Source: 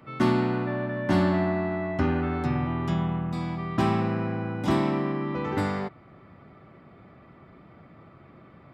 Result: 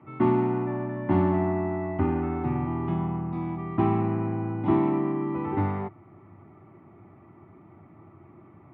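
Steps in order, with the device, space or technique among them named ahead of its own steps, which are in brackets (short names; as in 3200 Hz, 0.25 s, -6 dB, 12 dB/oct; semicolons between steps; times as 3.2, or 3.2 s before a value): bass cabinet (speaker cabinet 81–2300 Hz, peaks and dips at 98 Hz +10 dB, 340 Hz +9 dB, 520 Hz -8 dB, 870 Hz +6 dB, 1600 Hz -9 dB); gain -2.5 dB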